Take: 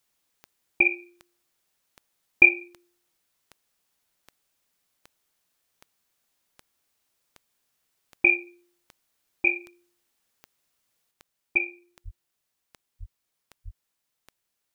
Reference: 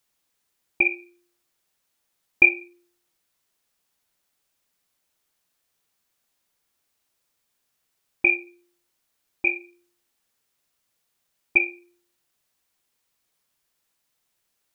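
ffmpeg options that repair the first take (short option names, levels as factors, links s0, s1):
-filter_complex "[0:a]adeclick=t=4,asplit=3[s0][s1][s2];[s0]afade=t=out:st=12.04:d=0.02[s3];[s1]highpass=f=140:w=0.5412,highpass=f=140:w=1.3066,afade=t=in:st=12.04:d=0.02,afade=t=out:st=12.16:d=0.02[s4];[s2]afade=t=in:st=12.16:d=0.02[s5];[s3][s4][s5]amix=inputs=3:normalize=0,asplit=3[s6][s7][s8];[s6]afade=t=out:st=12.99:d=0.02[s9];[s7]highpass=f=140:w=0.5412,highpass=f=140:w=1.3066,afade=t=in:st=12.99:d=0.02,afade=t=out:st=13.11:d=0.02[s10];[s8]afade=t=in:st=13.11:d=0.02[s11];[s9][s10][s11]amix=inputs=3:normalize=0,asplit=3[s12][s13][s14];[s12]afade=t=out:st=13.64:d=0.02[s15];[s13]highpass=f=140:w=0.5412,highpass=f=140:w=1.3066,afade=t=in:st=13.64:d=0.02,afade=t=out:st=13.76:d=0.02[s16];[s14]afade=t=in:st=13.76:d=0.02[s17];[s15][s16][s17]amix=inputs=3:normalize=0,asetnsamples=n=441:p=0,asendcmd='11.11 volume volume 5dB',volume=1"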